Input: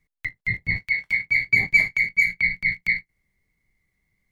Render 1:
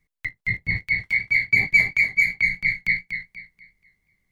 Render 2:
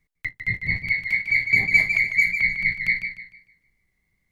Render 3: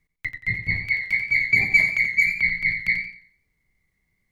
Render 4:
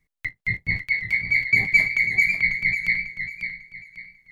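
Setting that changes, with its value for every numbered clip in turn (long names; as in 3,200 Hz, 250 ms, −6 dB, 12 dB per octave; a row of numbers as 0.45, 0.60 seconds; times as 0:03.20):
feedback echo with a swinging delay time, delay time: 241, 151, 88, 546 milliseconds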